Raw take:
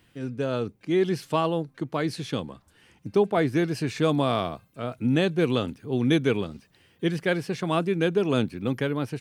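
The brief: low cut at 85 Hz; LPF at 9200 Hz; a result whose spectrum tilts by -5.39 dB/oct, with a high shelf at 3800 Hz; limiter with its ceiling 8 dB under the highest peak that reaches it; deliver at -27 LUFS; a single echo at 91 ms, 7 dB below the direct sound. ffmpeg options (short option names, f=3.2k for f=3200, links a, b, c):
-af "highpass=85,lowpass=9.2k,highshelf=f=3.8k:g=5.5,alimiter=limit=-17dB:level=0:latency=1,aecho=1:1:91:0.447,volume=1dB"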